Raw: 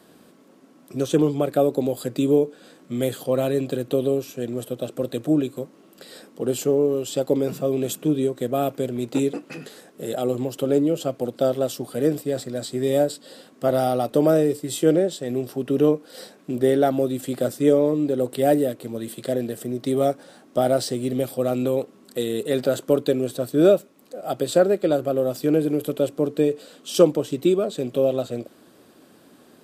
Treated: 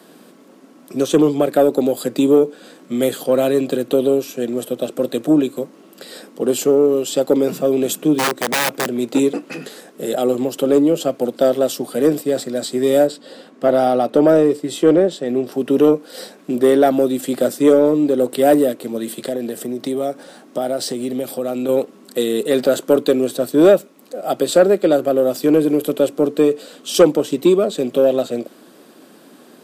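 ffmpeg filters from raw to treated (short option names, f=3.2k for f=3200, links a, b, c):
-filter_complex "[0:a]asplit=3[a][b][c];[a]afade=t=out:st=8.18:d=0.02[d];[b]aeval=exprs='(mod(8.91*val(0)+1,2)-1)/8.91':c=same,afade=t=in:st=8.18:d=0.02,afade=t=out:st=8.94:d=0.02[e];[c]afade=t=in:st=8.94:d=0.02[f];[d][e][f]amix=inputs=3:normalize=0,asettb=1/sr,asplit=3[g][h][i];[g]atrim=end=13.074[j];[h]atrim=start=13.07:end=15.52,asetpts=PTS-STARTPTS,afade=t=in:d=0.004:c=qsin,afade=t=out:st=2.446:d=0.004:c=qsin,aemphasis=mode=reproduction:type=50kf[k];[i]atrim=start=15.516[l];[j][k]acrossfade=d=0.004:c1=hsin:c2=qsin[m];[m][l]acrossfade=d=0.004:c1=qsin:c2=hsin,asettb=1/sr,asplit=3[n][o][p];[n]atrim=end=19.094[q];[o]atrim=start=19.09:end=21.69,asetpts=PTS-STARTPTS,afade=t=in:d=0.004:c=qsin,afade=t=out:st=2.596:d=0.004:c=qsin,acompressor=threshold=-27dB:ratio=2.5:attack=3.2:release=140:knee=1:detection=peak[r];[p]atrim=start=21.686[s];[q][r]acrossfade=d=0.004:c1=hsin:c2=qsin[t];[t][s]acrossfade=d=0.004:c1=qsin:c2=hsin,highpass=f=170:w=0.5412,highpass=f=170:w=1.3066,acontrast=80"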